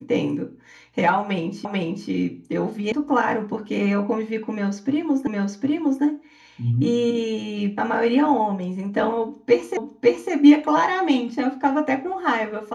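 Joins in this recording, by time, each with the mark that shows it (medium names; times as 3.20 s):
1.65 s: repeat of the last 0.44 s
2.92 s: sound stops dead
5.27 s: repeat of the last 0.76 s
9.77 s: repeat of the last 0.55 s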